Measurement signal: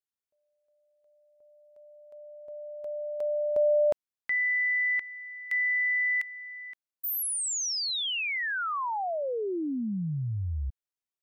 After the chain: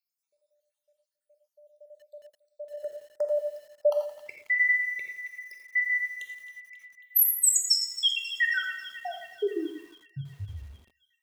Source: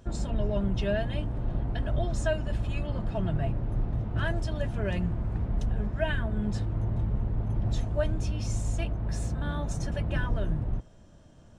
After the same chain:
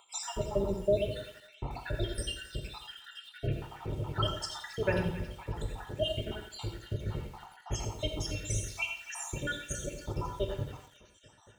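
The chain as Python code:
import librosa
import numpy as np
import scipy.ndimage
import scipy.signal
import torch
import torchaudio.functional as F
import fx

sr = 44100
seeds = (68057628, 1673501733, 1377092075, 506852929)

y = fx.spec_dropout(x, sr, seeds[0], share_pct=79)
y = fx.highpass(y, sr, hz=270.0, slope=6)
y = fx.high_shelf(y, sr, hz=2300.0, db=6.0)
y = fx.notch(y, sr, hz=2500.0, q=27.0)
y = y + 0.58 * np.pad(y, (int(2.2 * sr / 1000.0), 0))[:len(y)]
y = fx.echo_banded(y, sr, ms=270, feedback_pct=69, hz=2800.0, wet_db=-13)
y = fx.rev_gated(y, sr, seeds[1], gate_ms=140, shape='flat', drr_db=4.0)
y = fx.echo_crushed(y, sr, ms=85, feedback_pct=55, bits=9, wet_db=-11)
y = y * 10.0 ** (4.0 / 20.0)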